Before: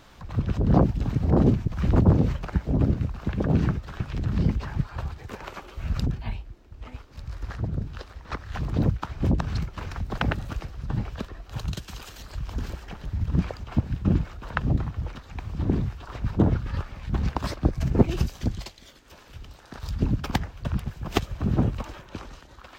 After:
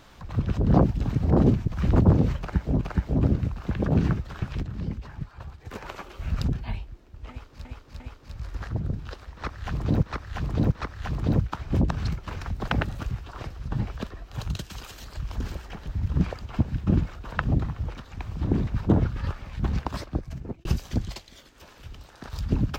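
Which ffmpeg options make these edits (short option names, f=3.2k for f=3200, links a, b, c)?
-filter_complex "[0:a]asplit=12[a][b][c][d][e][f][g][h][i][j][k][l];[a]atrim=end=2.812[m];[b]atrim=start=2.388:end=4.212[n];[c]atrim=start=4.208:end=5.232,asetpts=PTS-STARTPTS,volume=-8.5dB[o];[d]atrim=start=5.228:end=7.232[p];[e]atrim=start=6.878:end=7.232[q];[f]atrim=start=6.878:end=8.912[r];[g]atrim=start=8.218:end=8.912[s];[h]atrim=start=8.218:end=10.612[t];[i]atrim=start=15.848:end=16.172[u];[j]atrim=start=10.608:end=15.852[v];[k]atrim=start=16.168:end=18.15,asetpts=PTS-STARTPTS,afade=t=out:st=0.962:d=1.02[w];[l]atrim=start=18.15,asetpts=PTS-STARTPTS,afade=t=in:d=0.004:c=hsin[x];[m][n]acrossfade=d=0.004:c1=hsin:c2=hsin[y];[y][o]acrossfade=d=0.004:c1=hsin:c2=hsin[z];[z][p]acrossfade=d=0.004:c1=hsin:c2=hsin[aa];[aa][q]acrossfade=d=0.004:c1=hsin:c2=hsin[ab];[ab][r]acrossfade=d=0.004:c1=hsin:c2=hsin[ac];[ac][s]acrossfade=d=0.004:c1=hsin:c2=hsin[ad];[ad][t]acrossfade=d=0.004:c1=hsin:c2=hsin[ae];[ae][u]acrossfade=d=0.004:c1=hsin:c2=hsin[af];[af][v]acrossfade=d=0.004:c1=hsin:c2=hsin[ag];[w][x]concat=n=2:v=0:a=1[ah];[ag][ah]acrossfade=d=0.004:c1=hsin:c2=hsin"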